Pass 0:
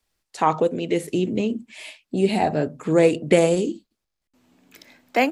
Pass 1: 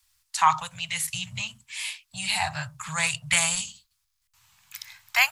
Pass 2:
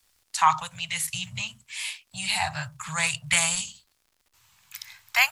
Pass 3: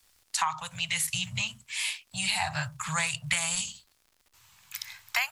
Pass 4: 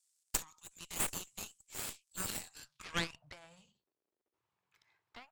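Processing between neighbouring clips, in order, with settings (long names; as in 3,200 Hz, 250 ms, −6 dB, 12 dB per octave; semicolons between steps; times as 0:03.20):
elliptic band-stop filter 120–980 Hz, stop band 80 dB; high-shelf EQ 3,600 Hz +9.5 dB; level +3 dB
surface crackle 96 per second −50 dBFS
downward compressor 16 to 1, threshold −26 dBFS, peak gain reduction 14 dB; level +2 dB
band-pass filter sweep 7,800 Hz → 390 Hz, 0:02.54–0:03.40; harmonic generator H 3 −13 dB, 4 −13 dB, 6 −10 dB, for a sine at −17 dBFS; level +3 dB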